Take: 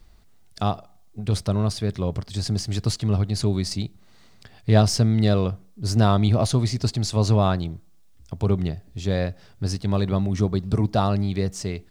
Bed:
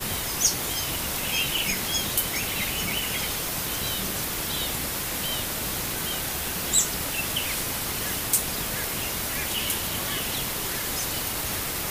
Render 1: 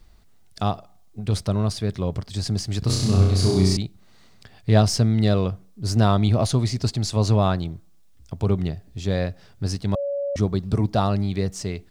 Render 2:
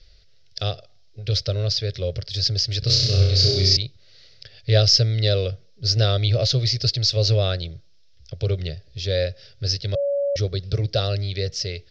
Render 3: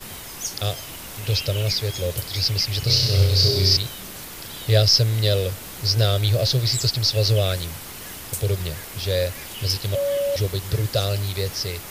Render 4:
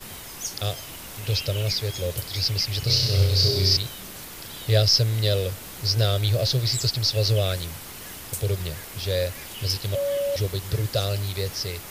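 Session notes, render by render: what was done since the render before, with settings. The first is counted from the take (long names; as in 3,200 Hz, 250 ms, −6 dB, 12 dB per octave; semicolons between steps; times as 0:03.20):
0:02.79–0:03.77: flutter between parallel walls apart 5.5 metres, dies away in 1 s; 0:09.95–0:10.36: beep over 565 Hz −23 dBFS
drawn EQ curve 140 Hz 0 dB, 210 Hz −20 dB, 540 Hz +6 dB, 950 Hz −23 dB, 1,400 Hz −2 dB, 5,300 Hz +13 dB, 9,000 Hz −28 dB
mix in bed −7.5 dB
level −2.5 dB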